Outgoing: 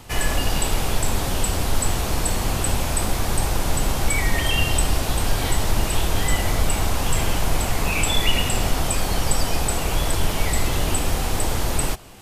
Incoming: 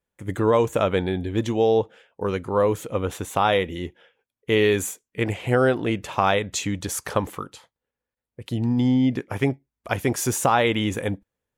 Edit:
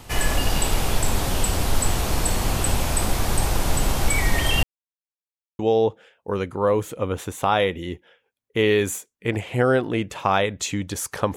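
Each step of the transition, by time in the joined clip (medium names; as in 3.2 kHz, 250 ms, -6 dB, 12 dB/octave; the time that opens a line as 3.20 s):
outgoing
4.63–5.59 s: mute
5.59 s: go over to incoming from 1.52 s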